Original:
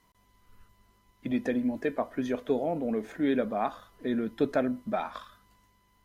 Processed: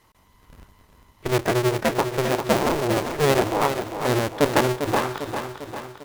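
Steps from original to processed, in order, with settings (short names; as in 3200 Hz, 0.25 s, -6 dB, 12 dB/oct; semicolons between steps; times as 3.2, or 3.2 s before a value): cycle switcher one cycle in 2, inverted; feedback echo 0.399 s, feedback 56%, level -8 dB; gain +7 dB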